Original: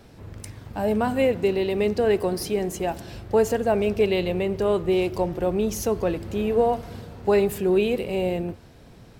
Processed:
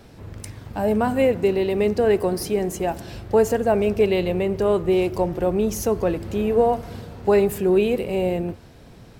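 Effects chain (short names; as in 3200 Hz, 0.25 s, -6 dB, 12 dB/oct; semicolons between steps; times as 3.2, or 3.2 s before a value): dynamic EQ 3600 Hz, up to -4 dB, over -44 dBFS, Q 1.1; gain +2.5 dB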